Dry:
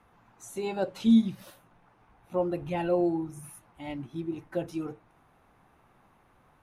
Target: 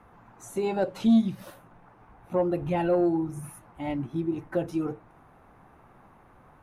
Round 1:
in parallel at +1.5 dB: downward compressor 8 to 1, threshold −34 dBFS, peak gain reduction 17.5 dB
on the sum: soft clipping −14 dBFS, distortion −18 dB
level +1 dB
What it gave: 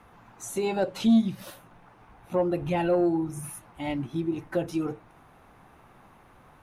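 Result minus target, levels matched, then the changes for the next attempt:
2,000 Hz band +2.5 dB
add after downward compressor: low-pass filter 2,200 Hz 12 dB per octave

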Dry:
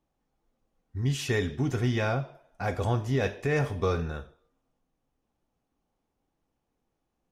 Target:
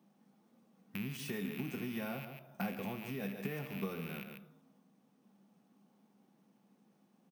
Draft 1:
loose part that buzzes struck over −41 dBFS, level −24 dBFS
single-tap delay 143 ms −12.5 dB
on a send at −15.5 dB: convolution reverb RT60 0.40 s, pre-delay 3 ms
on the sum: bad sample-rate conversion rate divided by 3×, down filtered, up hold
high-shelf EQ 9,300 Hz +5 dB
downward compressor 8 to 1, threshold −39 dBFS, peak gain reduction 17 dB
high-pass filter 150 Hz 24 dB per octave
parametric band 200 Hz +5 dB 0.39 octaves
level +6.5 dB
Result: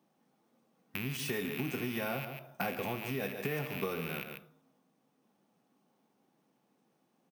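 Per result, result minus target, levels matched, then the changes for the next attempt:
downward compressor: peak gain reduction −7 dB; 250 Hz band −3.5 dB
change: downward compressor 8 to 1, threshold −47 dBFS, peak gain reduction 24 dB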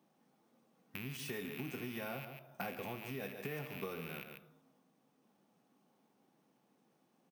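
250 Hz band −3.5 dB
change: parametric band 200 Hz +17 dB 0.39 octaves

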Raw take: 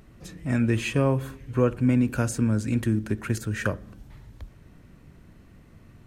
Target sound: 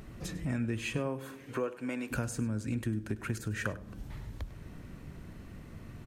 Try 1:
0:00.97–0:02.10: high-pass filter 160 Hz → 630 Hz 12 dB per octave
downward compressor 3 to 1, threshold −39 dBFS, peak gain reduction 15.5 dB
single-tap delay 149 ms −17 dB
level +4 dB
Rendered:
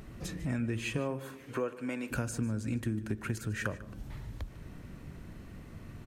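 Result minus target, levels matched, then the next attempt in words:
echo 49 ms late
0:00.97–0:02.10: high-pass filter 160 Hz → 630 Hz 12 dB per octave
downward compressor 3 to 1, threshold −39 dBFS, peak gain reduction 15.5 dB
single-tap delay 100 ms −17 dB
level +4 dB

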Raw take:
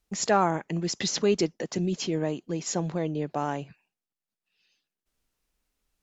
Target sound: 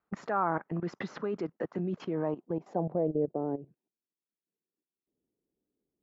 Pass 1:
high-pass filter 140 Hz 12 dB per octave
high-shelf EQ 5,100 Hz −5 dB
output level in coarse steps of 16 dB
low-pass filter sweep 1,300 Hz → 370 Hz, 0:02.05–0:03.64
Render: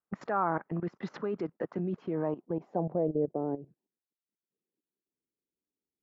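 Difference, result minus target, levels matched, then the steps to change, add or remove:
8,000 Hz band −6.5 dB
change: high-shelf EQ 5,100 Hz +5 dB

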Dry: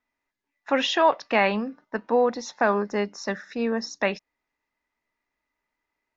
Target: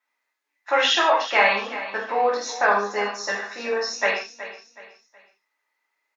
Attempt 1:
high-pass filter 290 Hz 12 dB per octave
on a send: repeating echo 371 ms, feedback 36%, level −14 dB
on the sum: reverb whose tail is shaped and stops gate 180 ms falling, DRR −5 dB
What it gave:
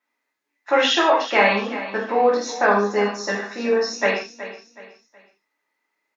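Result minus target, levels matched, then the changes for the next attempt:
250 Hz band +9.5 dB
change: high-pass filter 630 Hz 12 dB per octave

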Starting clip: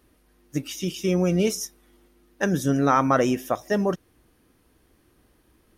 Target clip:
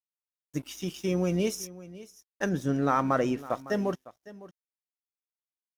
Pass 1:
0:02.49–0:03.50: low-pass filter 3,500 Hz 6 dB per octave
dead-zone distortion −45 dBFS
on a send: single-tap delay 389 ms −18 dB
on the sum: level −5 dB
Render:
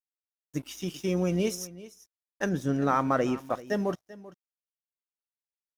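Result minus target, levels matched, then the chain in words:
echo 167 ms early
0:02.49–0:03.50: low-pass filter 3,500 Hz 6 dB per octave
dead-zone distortion −45 dBFS
on a send: single-tap delay 556 ms −18 dB
on the sum: level −5 dB

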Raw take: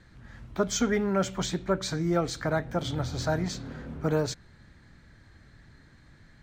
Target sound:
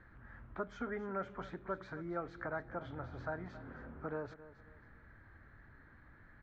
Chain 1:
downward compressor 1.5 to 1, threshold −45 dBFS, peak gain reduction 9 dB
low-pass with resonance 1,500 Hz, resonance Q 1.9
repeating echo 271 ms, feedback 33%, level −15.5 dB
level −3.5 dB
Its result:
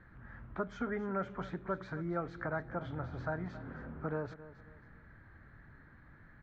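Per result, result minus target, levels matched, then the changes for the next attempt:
125 Hz band +3.0 dB; downward compressor: peak gain reduction −2.5 dB
add after low-pass with resonance: parametric band 160 Hz −6 dB 0.77 octaves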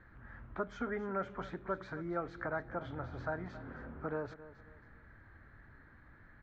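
downward compressor: peak gain reduction −2.5 dB
change: downward compressor 1.5 to 1, threshold −53 dBFS, peak gain reduction 11.5 dB

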